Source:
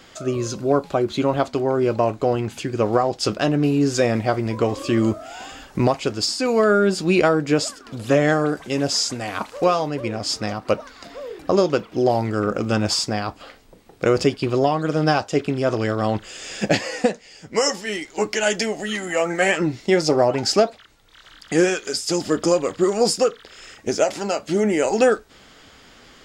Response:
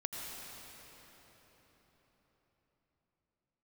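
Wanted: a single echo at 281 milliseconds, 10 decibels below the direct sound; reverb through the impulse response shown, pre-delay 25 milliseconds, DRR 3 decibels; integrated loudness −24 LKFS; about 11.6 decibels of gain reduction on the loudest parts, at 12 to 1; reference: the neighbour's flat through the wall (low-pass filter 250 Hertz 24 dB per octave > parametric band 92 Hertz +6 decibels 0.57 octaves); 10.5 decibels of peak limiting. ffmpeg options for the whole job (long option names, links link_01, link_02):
-filter_complex "[0:a]acompressor=threshold=-24dB:ratio=12,alimiter=limit=-21.5dB:level=0:latency=1,aecho=1:1:281:0.316,asplit=2[link_01][link_02];[1:a]atrim=start_sample=2205,adelay=25[link_03];[link_02][link_03]afir=irnorm=-1:irlink=0,volume=-4.5dB[link_04];[link_01][link_04]amix=inputs=2:normalize=0,lowpass=frequency=250:width=0.5412,lowpass=frequency=250:width=1.3066,equalizer=frequency=92:width_type=o:width=0.57:gain=6,volume=11.5dB"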